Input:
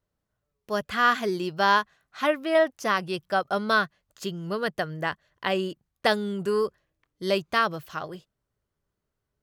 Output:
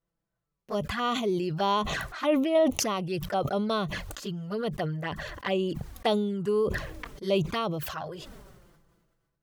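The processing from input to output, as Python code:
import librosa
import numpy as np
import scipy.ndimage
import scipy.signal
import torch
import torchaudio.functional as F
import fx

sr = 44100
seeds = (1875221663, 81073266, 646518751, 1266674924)

y = fx.high_shelf(x, sr, hz=2100.0, db=-4.5)
y = fx.env_flanger(y, sr, rest_ms=6.0, full_db=-24.0)
y = fx.sustainer(y, sr, db_per_s=34.0)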